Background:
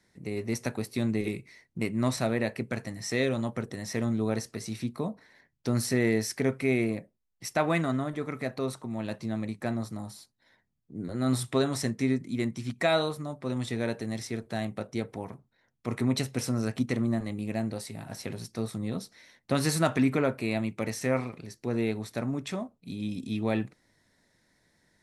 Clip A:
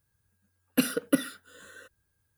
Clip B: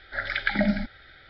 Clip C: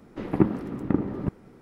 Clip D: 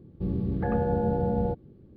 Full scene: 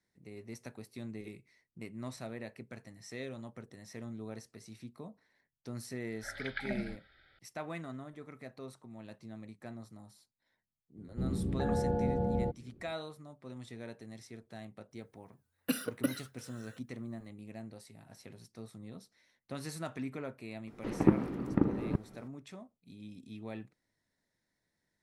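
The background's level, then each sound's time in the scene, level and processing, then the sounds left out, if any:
background -15 dB
6.10 s: add B -14 dB
10.97 s: add D -5.5 dB
14.91 s: add A -8 dB + warped record 78 rpm, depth 160 cents
20.67 s: add C -4 dB

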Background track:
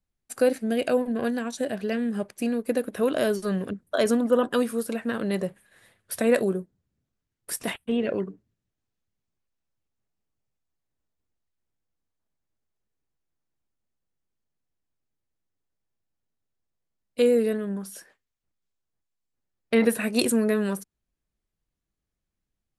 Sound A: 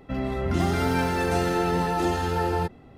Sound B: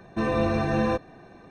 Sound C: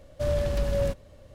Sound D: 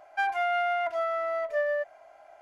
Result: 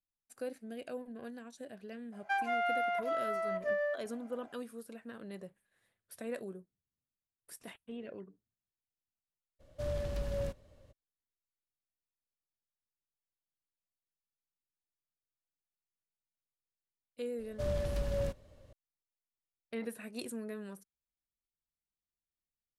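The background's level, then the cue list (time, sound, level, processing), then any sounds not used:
background track -19 dB
2.12 s: add D -5.5 dB
9.59 s: add C -10 dB, fades 0.02 s
17.39 s: add C -8 dB
not used: A, B

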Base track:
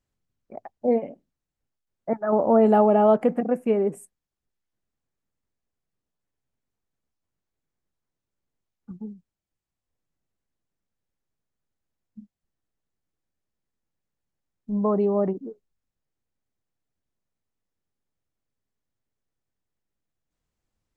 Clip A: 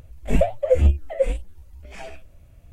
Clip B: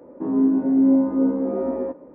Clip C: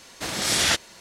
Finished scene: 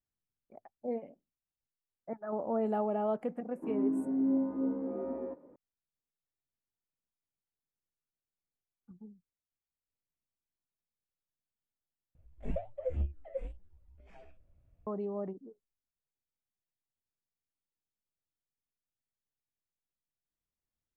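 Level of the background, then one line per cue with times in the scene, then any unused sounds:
base track -14.5 dB
3.42 s: add B -13 dB + high-pass 41 Hz
12.15 s: replace with A -17 dB + low-pass 1.2 kHz 6 dB/octave
not used: C

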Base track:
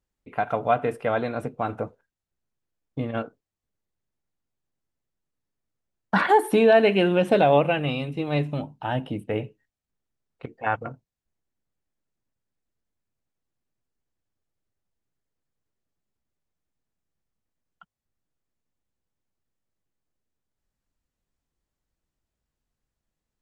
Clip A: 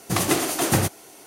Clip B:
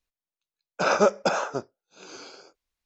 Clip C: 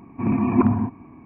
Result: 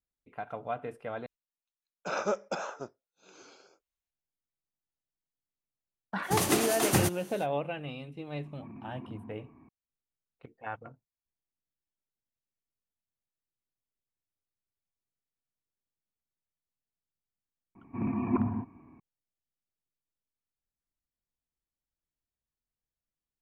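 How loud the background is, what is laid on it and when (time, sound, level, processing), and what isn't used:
base track -13.5 dB
1.26 s: replace with B -10.5 dB + band-stop 4.7 kHz, Q 8.8
6.21 s: add A -5.5 dB, fades 0.05 s
8.44 s: add C -12 dB + compression 3:1, threshold -36 dBFS
17.75 s: add C -10.5 dB

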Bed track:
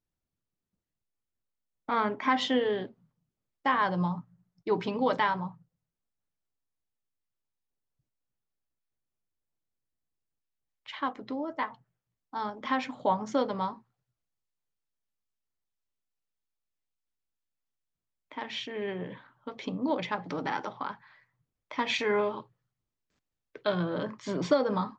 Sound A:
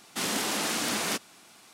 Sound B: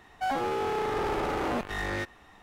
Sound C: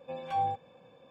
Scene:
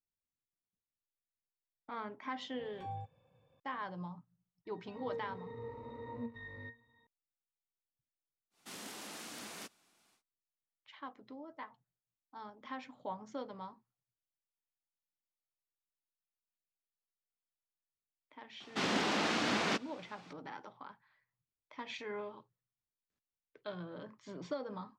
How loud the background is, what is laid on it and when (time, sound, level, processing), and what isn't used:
bed track -15 dB
2.50 s: add C -14.5 dB + resonant low shelf 160 Hz +11.5 dB, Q 1.5
4.65 s: add B -2.5 dB + pitch-class resonator A#, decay 0.2 s
8.50 s: add A -18 dB, fades 0.10 s
18.60 s: add A -0.5 dB + distance through air 170 m

